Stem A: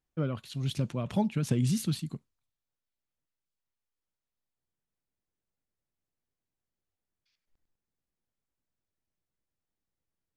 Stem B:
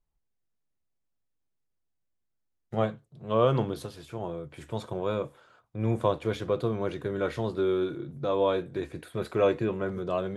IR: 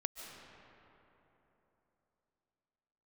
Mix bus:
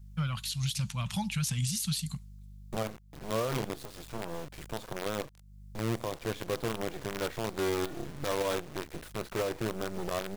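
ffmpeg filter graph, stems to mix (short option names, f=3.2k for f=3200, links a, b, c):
-filter_complex "[0:a]highshelf=f=2.4k:g=12,aeval=exprs='val(0)+0.00355*(sin(2*PI*50*n/s)+sin(2*PI*2*50*n/s)/2+sin(2*PI*3*50*n/s)/3+sin(2*PI*4*50*n/s)/4+sin(2*PI*5*50*n/s)/5)':c=same,firequalizer=gain_entry='entry(190,0);entry(310,-30);entry(830,-1);entry(5000,4)':delay=0.05:min_phase=1,volume=2dB[a];[1:a]acrusher=bits=5:dc=4:mix=0:aa=0.000001,acompressor=threshold=-29dB:ratio=2,volume=2.5dB,asplit=2[b][c];[c]apad=whole_len=461653[d];[a][d]sidechaincompress=threshold=-39dB:ratio=8:attack=16:release=390[e];[e][b]amix=inputs=2:normalize=0,alimiter=limit=-23dB:level=0:latency=1:release=103"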